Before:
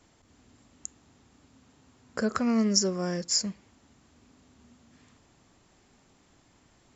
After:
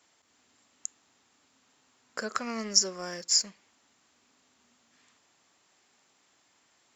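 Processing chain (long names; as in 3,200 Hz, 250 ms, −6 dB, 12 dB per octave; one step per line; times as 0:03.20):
high-pass filter 1,200 Hz 6 dB per octave
in parallel at −9 dB: dead-zone distortion −46 dBFS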